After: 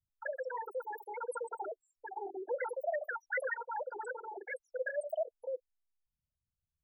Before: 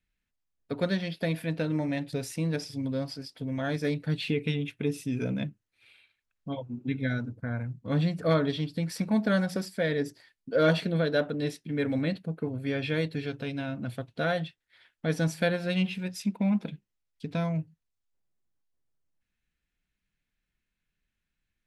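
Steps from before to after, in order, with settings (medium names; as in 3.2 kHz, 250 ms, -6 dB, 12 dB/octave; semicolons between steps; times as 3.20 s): rattle on loud lows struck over -35 dBFS, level -32 dBFS; loudest bins only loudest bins 2; wide varispeed 3.17×; trim -6 dB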